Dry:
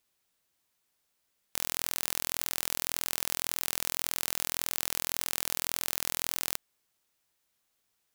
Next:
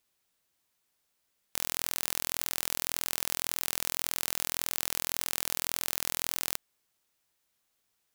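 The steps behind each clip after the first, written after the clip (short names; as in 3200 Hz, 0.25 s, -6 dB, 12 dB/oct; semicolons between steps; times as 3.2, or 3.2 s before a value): nothing audible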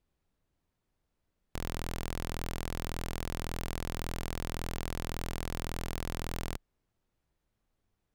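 tilt -4.5 dB/oct; gain -1.5 dB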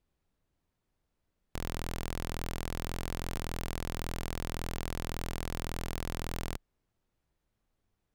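stuck buffer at 2.86, samples 2048, times 10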